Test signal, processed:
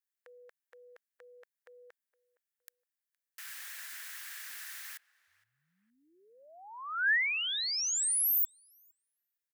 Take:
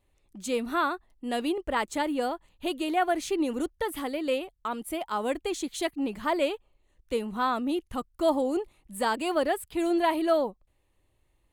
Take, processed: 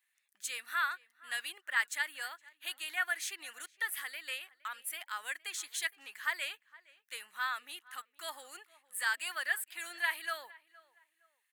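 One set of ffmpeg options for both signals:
-filter_complex "[0:a]highpass=f=1700:t=q:w=4.7,crystalizer=i=2:c=0,asplit=2[s0][s1];[s1]adelay=465,lowpass=f=2200:p=1,volume=0.0891,asplit=2[s2][s3];[s3]adelay=465,lowpass=f=2200:p=1,volume=0.32[s4];[s0][s2][s4]amix=inputs=3:normalize=0,volume=0.355"

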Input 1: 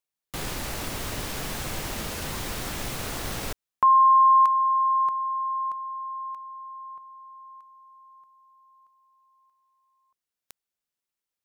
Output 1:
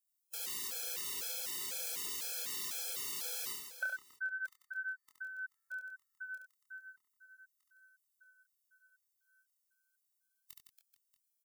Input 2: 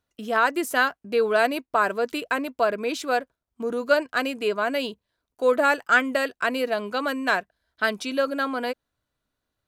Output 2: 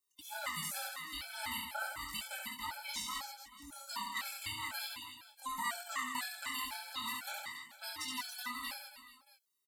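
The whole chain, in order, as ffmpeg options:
-filter_complex "[0:a]afftfilt=real='real(if(between(b,1,1008),(2*floor((b-1)/24)+1)*24-b,b),0)':imag='imag(if(between(b,1,1008),(2*floor((b-1)/24)+1)*24-b,b),0)*if(between(b,1,1008),-1,1)':win_size=2048:overlap=0.75,aderivative,acrossover=split=5000[s0][s1];[s1]acompressor=threshold=0.01:ratio=4:attack=1:release=60[s2];[s0][s2]amix=inputs=2:normalize=0,bass=f=250:g=11,treble=f=4000:g=5,acompressor=threshold=0.01:ratio=4:attack=64:release=111:knee=6:detection=peak,flanger=delay=22.5:depth=6.6:speed=0.38,aecho=1:1:70|161|279.3|433.1|633:0.631|0.398|0.251|0.158|0.1,afftfilt=real='re*gt(sin(2*PI*2*pts/sr)*(1-2*mod(floor(b*sr/1024/440),2)),0)':imag='im*gt(sin(2*PI*2*pts/sr)*(1-2*mod(floor(b*sr/1024/440),2)),0)':win_size=1024:overlap=0.75,volume=1.58"

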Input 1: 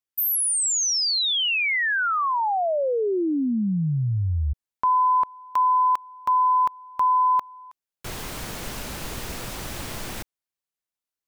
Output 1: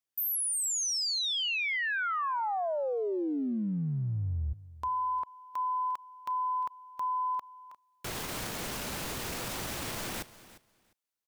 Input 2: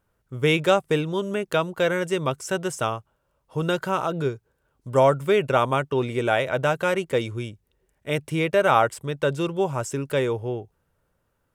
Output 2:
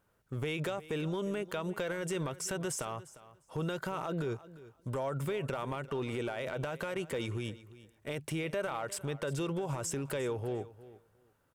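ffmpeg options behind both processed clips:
-af "lowshelf=f=65:g=-11,acompressor=threshold=0.0355:ratio=12:attack=0.15:release=49:knee=1:detection=rms,aecho=1:1:352|704:0.133|0.0213"

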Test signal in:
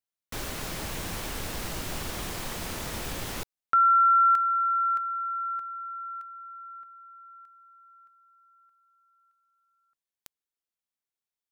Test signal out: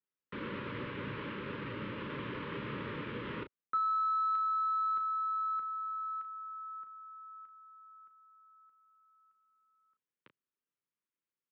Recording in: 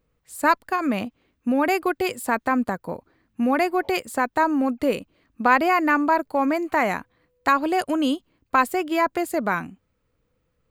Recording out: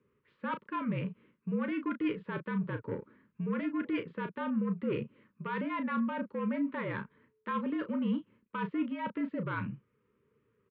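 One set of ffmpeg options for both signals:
-af "highshelf=f=2400:g=-11.5,areverse,acompressor=threshold=0.0282:ratio=6:attack=11:release=175:knee=6:detection=rms,areverse,asoftclip=type=tanh:threshold=0.0398,aecho=1:1:11|35:0.266|0.355,highpass=f=180:t=q:w=0.5412,highpass=f=180:t=q:w=1.307,lowpass=f=3300:t=q:w=0.5176,lowpass=f=3300:t=q:w=0.7071,lowpass=f=3300:t=q:w=1.932,afreqshift=-59,asuperstop=centerf=730:order=4:qfactor=1.8,volume=1.33"

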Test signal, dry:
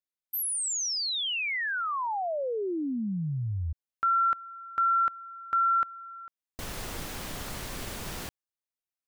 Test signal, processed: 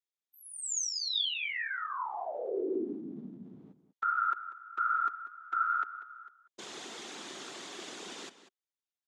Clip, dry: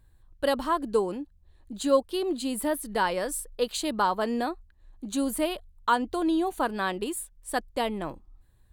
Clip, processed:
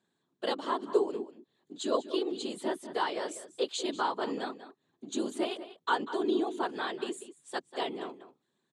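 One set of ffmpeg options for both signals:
-filter_complex "[0:a]afftfilt=real='hypot(re,im)*cos(2*PI*random(0))':imag='hypot(re,im)*sin(2*PI*random(1))':win_size=512:overlap=0.75,highpass=f=240:w=0.5412,highpass=f=240:w=1.3066,equalizer=f=380:t=q:w=4:g=6,equalizer=f=550:t=q:w=4:g=-3,equalizer=f=3500:t=q:w=4:g=7,equalizer=f=6800:t=q:w=4:g=5,lowpass=f=7800:w=0.5412,lowpass=f=7800:w=1.3066,asplit=2[s0][s1];[s1]adelay=192.4,volume=0.224,highshelf=f=4000:g=-4.33[s2];[s0][s2]amix=inputs=2:normalize=0"

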